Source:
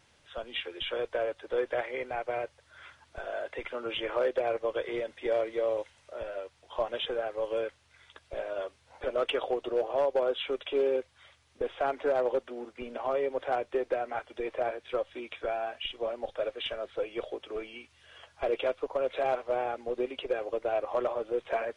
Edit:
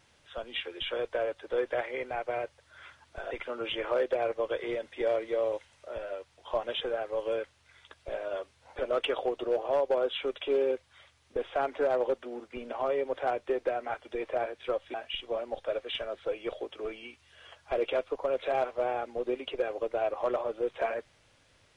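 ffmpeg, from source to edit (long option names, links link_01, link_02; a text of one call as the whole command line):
ffmpeg -i in.wav -filter_complex "[0:a]asplit=3[link_01][link_02][link_03];[link_01]atrim=end=3.312[link_04];[link_02]atrim=start=3.558:end=15.192[link_05];[link_03]atrim=start=15.648[link_06];[link_04][link_05]acrossfade=duration=0.004:curve1=hsin:curve2=hsin[link_07];[link_07][link_06]acrossfade=duration=0.004:curve1=hsin:curve2=hsin" out.wav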